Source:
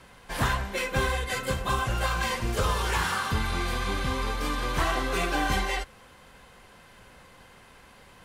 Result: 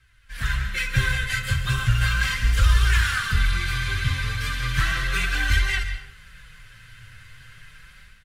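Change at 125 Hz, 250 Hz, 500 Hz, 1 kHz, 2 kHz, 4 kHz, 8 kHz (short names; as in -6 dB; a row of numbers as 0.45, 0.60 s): +8.5, -4.5, -12.5, -5.0, +6.5, +4.5, +2.0 dB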